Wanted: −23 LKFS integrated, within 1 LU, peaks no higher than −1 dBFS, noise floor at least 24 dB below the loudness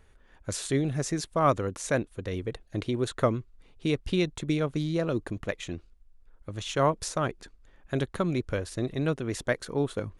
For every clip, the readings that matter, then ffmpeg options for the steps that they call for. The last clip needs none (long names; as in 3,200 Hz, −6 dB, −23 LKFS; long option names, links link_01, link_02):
integrated loudness −30.0 LKFS; sample peak −11.5 dBFS; target loudness −23.0 LKFS
→ -af "volume=7dB"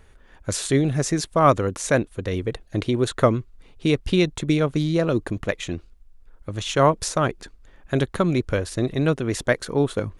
integrated loudness −23.0 LKFS; sample peak −4.5 dBFS; background noise floor −52 dBFS